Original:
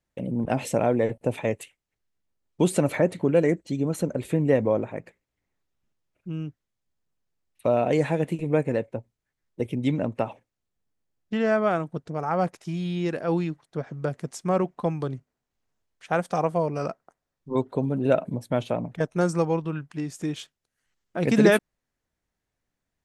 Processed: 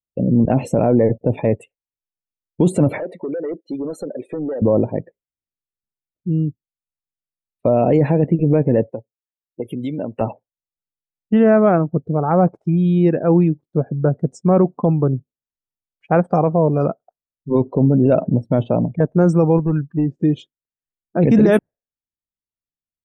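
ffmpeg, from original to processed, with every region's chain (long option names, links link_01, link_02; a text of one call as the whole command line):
ffmpeg -i in.wav -filter_complex "[0:a]asettb=1/sr,asplit=3[link_01][link_02][link_03];[link_01]atrim=end=2.984[link_04];[link_02]atrim=start=2.98:end=4.62,asetpts=PTS-STARTPTS,afade=type=in:duration=0.004:curve=qsin,afade=type=out:start_time=1.636:duration=0.004:curve=qsin,highpass=430,acompressor=threshold=-28dB:ratio=5:attack=3.2:release=140:knee=1:detection=peak,asoftclip=type=hard:threshold=-32.5dB[link_05];[link_03]atrim=start=4.616[link_06];[link_04][link_05]acrossfade=duration=0.004:curve1=hsin:curve2=qsin[link_07];[link_07][link_06]acrossfade=duration=0.004:curve1=qsin:curve2=hsin,asettb=1/sr,asplit=3[link_08][link_09][link_10];[link_08]atrim=end=8.904[link_11];[link_09]atrim=start=8.9:end=10.21,asetpts=PTS-STARTPTS,afade=type=in:duration=0.004:curve=qsin,afade=type=out:start_time=1.306:duration=0.004:curve=qsin,acompressor=threshold=-26dB:ratio=6:attack=3.2:release=140:knee=1:detection=peak,aemphasis=mode=production:type=riaa[link_12];[link_10]atrim=start=10.206[link_13];[link_11][link_12]acrossfade=duration=0.004:curve1=hsin:curve2=qsin[link_14];[link_14][link_13]acrossfade=duration=0.004:curve1=qsin:curve2=hsin,asettb=1/sr,asplit=3[link_15][link_16][link_17];[link_15]atrim=end=19.584[link_18];[link_16]atrim=start=19.58:end=20.22,asetpts=PTS-STARTPTS,afade=type=in:duration=0.004:curve=qsin,afade=type=out:start_time=0.636:duration=0.004:curve=qsin,acompressor=mode=upward:threshold=-40dB:ratio=2.5:attack=3.2:release=140:knee=2.83:detection=peak,lowpass=3700,asoftclip=type=hard:threshold=-25dB[link_19];[link_17]atrim=start=20.216[link_20];[link_18][link_19]acrossfade=duration=0.004:curve1=hsin:curve2=qsin[link_21];[link_21][link_20]acrossfade=duration=0.004:curve1=qsin:curve2=hsin,afftdn=noise_reduction=32:noise_floor=-39,tiltshelf=frequency=970:gain=7.5,alimiter=limit=-12dB:level=0:latency=1:release=11,volume=6.5dB" out.wav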